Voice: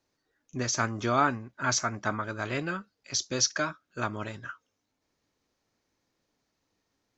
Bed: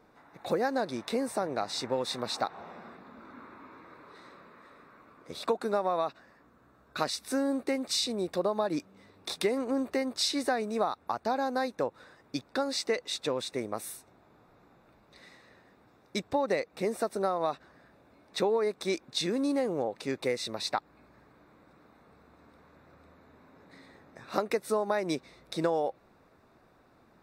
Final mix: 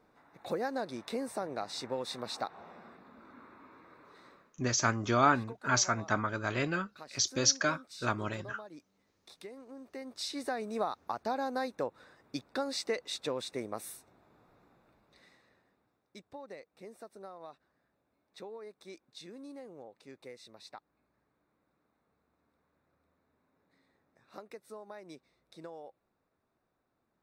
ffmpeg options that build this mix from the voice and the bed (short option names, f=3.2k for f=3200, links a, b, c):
-filter_complex "[0:a]adelay=4050,volume=-0.5dB[a];[1:a]volume=9.5dB,afade=t=out:st=4.3:d=0.23:silence=0.211349,afade=t=in:st=9.8:d=1.03:silence=0.177828,afade=t=out:st=14.5:d=1.53:silence=0.188365[b];[a][b]amix=inputs=2:normalize=0"